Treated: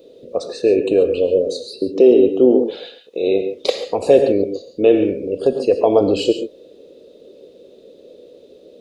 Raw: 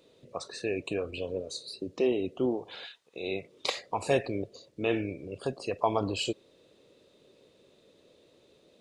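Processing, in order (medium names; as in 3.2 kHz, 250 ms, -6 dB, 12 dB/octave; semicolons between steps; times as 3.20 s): graphic EQ 125/250/500/1000/2000/8000 Hz -9/+3/+11/-11/-8/-8 dB; gated-style reverb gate 160 ms rising, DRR 8.5 dB; loudness maximiser +12 dB; trim -1 dB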